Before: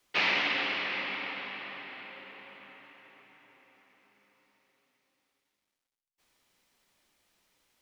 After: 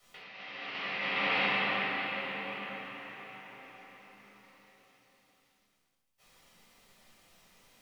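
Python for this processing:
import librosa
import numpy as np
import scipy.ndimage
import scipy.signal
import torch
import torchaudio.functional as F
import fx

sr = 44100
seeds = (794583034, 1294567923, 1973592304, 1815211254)

y = fx.over_compress(x, sr, threshold_db=-38.0, ratio=-0.5)
y = fx.room_shoebox(y, sr, seeds[0], volume_m3=870.0, walls='furnished', distance_m=6.5)
y = y * 10.0 ** (-3.0 / 20.0)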